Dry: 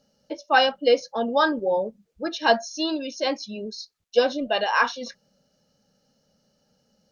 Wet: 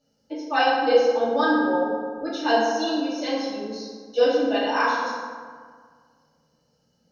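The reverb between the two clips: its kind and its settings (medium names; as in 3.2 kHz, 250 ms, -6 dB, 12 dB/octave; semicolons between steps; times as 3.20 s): FDN reverb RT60 1.8 s, low-frequency decay 1.1×, high-frequency decay 0.5×, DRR -9.5 dB; trim -10 dB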